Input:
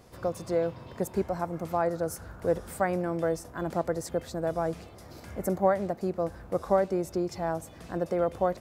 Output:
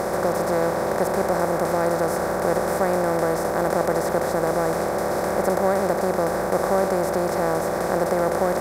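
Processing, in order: spectral levelling over time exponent 0.2; trim -1.5 dB

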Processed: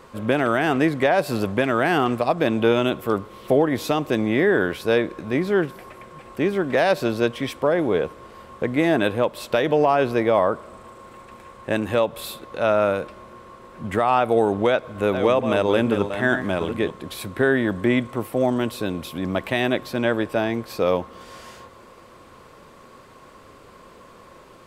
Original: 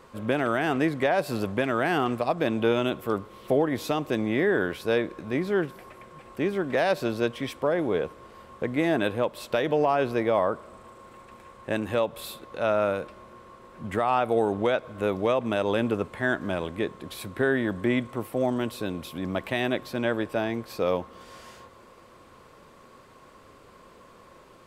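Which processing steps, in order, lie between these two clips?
14.50–16.91 s: chunks repeated in reverse 454 ms, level -8 dB; trim +5 dB

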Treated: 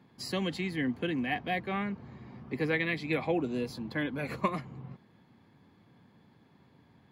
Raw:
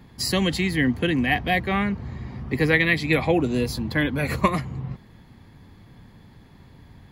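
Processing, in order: high-pass 160 Hz 12 dB/octave; treble shelf 5.2 kHz -10.5 dB; band-stop 1.9 kHz, Q 16; trim -8.5 dB

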